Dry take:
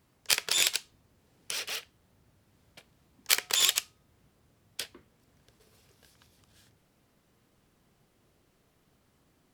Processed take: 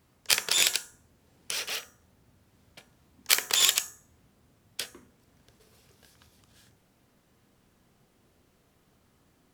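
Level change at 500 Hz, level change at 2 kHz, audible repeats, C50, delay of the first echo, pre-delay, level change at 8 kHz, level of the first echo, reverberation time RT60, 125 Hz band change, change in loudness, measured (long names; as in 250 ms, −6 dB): +2.0 dB, +2.0 dB, no echo audible, 15.0 dB, no echo audible, 16 ms, +2.5 dB, no echo audible, 0.50 s, +2.5 dB, +2.5 dB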